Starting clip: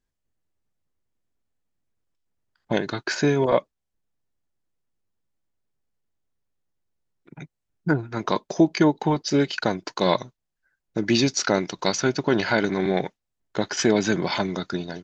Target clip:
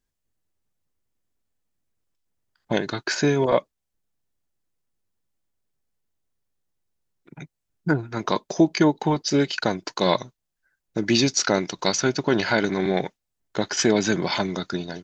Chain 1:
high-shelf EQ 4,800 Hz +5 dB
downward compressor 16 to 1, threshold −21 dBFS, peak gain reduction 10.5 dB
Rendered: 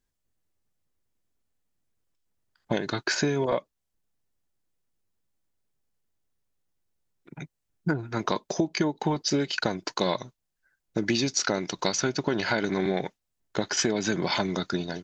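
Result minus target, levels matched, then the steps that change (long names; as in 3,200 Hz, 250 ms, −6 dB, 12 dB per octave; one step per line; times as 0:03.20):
downward compressor: peak gain reduction +10.5 dB
remove: downward compressor 16 to 1, threshold −21 dBFS, peak gain reduction 10.5 dB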